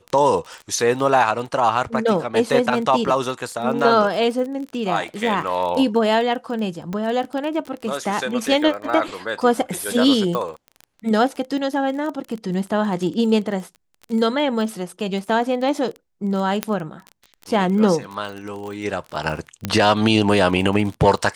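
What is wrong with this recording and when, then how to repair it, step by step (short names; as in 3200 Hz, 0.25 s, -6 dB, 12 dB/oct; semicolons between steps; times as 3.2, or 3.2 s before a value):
crackle 21/s -27 dBFS
6.93 pop -16 dBFS
10.35 pop -13 dBFS
16.63 pop -5 dBFS
19.65 pop -8 dBFS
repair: de-click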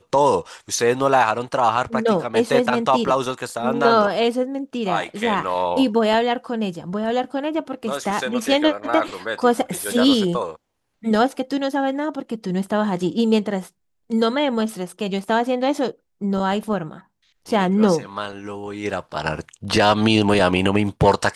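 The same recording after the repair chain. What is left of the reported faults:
16.63 pop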